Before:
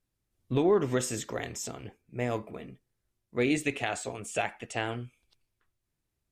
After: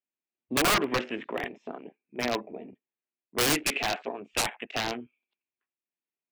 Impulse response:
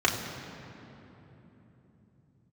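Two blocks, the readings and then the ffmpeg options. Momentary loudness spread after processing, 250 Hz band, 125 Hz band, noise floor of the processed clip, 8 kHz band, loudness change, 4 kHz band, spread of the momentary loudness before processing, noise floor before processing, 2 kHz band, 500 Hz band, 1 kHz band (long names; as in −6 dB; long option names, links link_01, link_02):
18 LU, −2.0 dB, −6.0 dB, below −85 dBFS, +5.0 dB, +2.5 dB, +10.5 dB, 18 LU, −83 dBFS, +5.0 dB, −2.5 dB, +5.0 dB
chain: -af "highpass=frequency=240:width=0.5412,highpass=frequency=240:width=1.3066,equalizer=frequency=310:width_type=q:width=4:gain=-4,equalizer=frequency=500:width_type=q:width=4:gain=-6,equalizer=frequency=1300:width_type=q:width=4:gain=-5,equalizer=frequency=2500:width_type=q:width=4:gain=6,lowpass=frequency=3100:width=0.5412,lowpass=frequency=3100:width=1.3066,aeval=exprs='(mod(15.8*val(0)+1,2)-1)/15.8':channel_layout=same,afwtdn=0.00562,volume=6dB"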